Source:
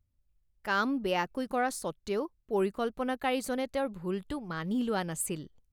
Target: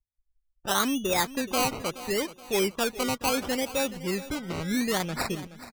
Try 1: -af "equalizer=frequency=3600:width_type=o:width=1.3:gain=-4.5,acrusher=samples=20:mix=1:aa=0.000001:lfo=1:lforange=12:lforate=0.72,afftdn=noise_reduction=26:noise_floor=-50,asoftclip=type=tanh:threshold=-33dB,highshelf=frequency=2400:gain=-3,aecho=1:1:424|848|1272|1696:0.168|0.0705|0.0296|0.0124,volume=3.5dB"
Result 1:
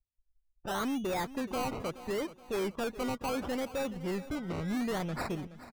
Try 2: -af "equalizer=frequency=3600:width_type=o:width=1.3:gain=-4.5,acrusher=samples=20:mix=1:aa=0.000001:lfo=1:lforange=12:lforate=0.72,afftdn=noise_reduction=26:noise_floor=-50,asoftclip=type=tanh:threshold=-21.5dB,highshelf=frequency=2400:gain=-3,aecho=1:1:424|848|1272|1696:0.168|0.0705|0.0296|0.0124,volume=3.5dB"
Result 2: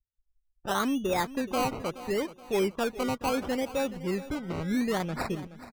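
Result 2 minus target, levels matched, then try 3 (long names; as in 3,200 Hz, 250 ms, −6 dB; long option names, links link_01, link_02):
4,000 Hz band −5.5 dB
-af "equalizer=frequency=3600:width_type=o:width=1.3:gain=-4.5,acrusher=samples=20:mix=1:aa=0.000001:lfo=1:lforange=12:lforate=0.72,afftdn=noise_reduction=26:noise_floor=-50,asoftclip=type=tanh:threshold=-21.5dB,highshelf=frequency=2400:gain=8,aecho=1:1:424|848|1272|1696:0.168|0.0705|0.0296|0.0124,volume=3.5dB"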